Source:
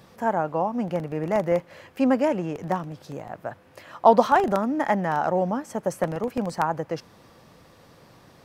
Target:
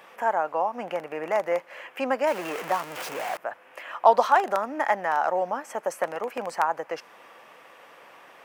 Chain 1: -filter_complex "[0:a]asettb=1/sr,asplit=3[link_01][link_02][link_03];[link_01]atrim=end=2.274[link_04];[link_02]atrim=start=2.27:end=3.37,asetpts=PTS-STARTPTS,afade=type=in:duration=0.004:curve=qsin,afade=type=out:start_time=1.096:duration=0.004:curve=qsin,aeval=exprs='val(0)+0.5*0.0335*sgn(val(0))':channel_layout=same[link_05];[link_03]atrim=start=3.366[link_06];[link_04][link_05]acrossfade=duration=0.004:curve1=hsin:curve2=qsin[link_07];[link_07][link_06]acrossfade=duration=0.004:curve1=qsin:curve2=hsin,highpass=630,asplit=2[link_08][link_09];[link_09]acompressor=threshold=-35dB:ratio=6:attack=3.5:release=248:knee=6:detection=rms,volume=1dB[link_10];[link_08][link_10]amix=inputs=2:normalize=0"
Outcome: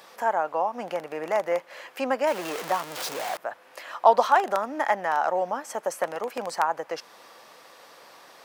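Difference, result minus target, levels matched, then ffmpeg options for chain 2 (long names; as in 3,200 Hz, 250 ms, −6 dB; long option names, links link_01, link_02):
4,000 Hz band +3.0 dB
-filter_complex "[0:a]asettb=1/sr,asplit=3[link_01][link_02][link_03];[link_01]atrim=end=2.274[link_04];[link_02]atrim=start=2.27:end=3.37,asetpts=PTS-STARTPTS,afade=type=in:duration=0.004:curve=qsin,afade=type=out:start_time=1.096:duration=0.004:curve=qsin,aeval=exprs='val(0)+0.5*0.0335*sgn(val(0))':channel_layout=same[link_05];[link_03]atrim=start=3.366[link_06];[link_04][link_05]acrossfade=duration=0.004:curve1=hsin:curve2=qsin[link_07];[link_07][link_06]acrossfade=duration=0.004:curve1=qsin:curve2=hsin,highpass=630,asplit=2[link_08][link_09];[link_09]acompressor=threshold=-35dB:ratio=6:attack=3.5:release=248:knee=6:detection=rms,lowpass=frequency=2900:width_type=q:width=2.1,volume=1dB[link_10];[link_08][link_10]amix=inputs=2:normalize=0"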